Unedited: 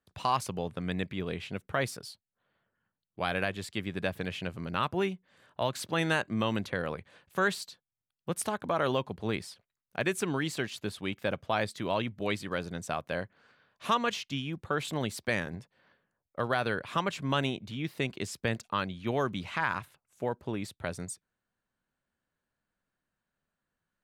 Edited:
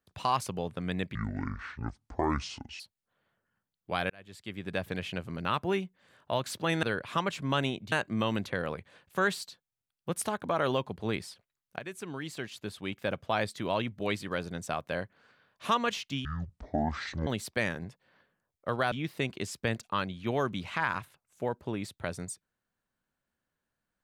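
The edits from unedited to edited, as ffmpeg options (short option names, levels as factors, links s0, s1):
-filter_complex "[0:a]asplit=10[s0][s1][s2][s3][s4][s5][s6][s7][s8][s9];[s0]atrim=end=1.154[s10];[s1]atrim=start=1.15:end=2.09,asetpts=PTS-STARTPTS,asetrate=25137,aresample=44100,atrim=end_sample=72726,asetpts=PTS-STARTPTS[s11];[s2]atrim=start=2.086:end=3.39,asetpts=PTS-STARTPTS,afade=t=out:st=1.3:d=0.004:c=hsin[s12];[s3]atrim=start=3.39:end=6.122,asetpts=PTS-STARTPTS,afade=t=in:d=0.77[s13];[s4]atrim=start=16.628:end=17.722[s14];[s5]atrim=start=6.118:end=9.99,asetpts=PTS-STARTPTS,afade=t=out:st=3.868:d=0.004:c=hsin:silence=0.211349[s15];[s6]atrim=start=9.99:end=14.454,asetpts=PTS-STARTPTS,afade=t=in:d=1.45:silence=0.211349[s16];[s7]atrim=start=14.45:end=14.98,asetpts=PTS-STARTPTS,asetrate=22932,aresample=44100,atrim=end_sample=44948,asetpts=PTS-STARTPTS[s17];[s8]atrim=start=14.976:end=16.632[s18];[s9]atrim=start=17.718[s19];[s10][s11]acrossfade=d=0.004:c1=hsin:c2=hsin[s20];[s12][s13]concat=n=2:v=0:a=1[s21];[s20][s21]acrossfade=d=0.004:c1=hsin:c2=hsin[s22];[s22][s14]acrossfade=d=0.004:c1=hsin:c2=hsin[s23];[s15][s16]concat=n=2:v=0:a=1[s24];[s23][s24]acrossfade=d=0.004:c1=hsin:c2=hsin[s25];[s25][s17]acrossfade=d=0.004:c1=hsin:c2=hsin[s26];[s26][s18]acrossfade=d=0.004:c1=hsin:c2=hsin[s27];[s27][s19]acrossfade=d=0.004:c1=hsin:c2=hsin"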